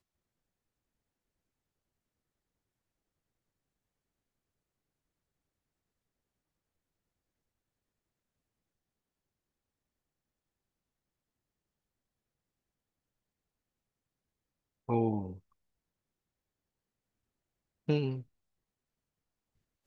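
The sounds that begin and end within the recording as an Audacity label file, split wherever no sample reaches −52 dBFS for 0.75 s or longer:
14.880000	15.380000	sound
17.880000	18.230000	sound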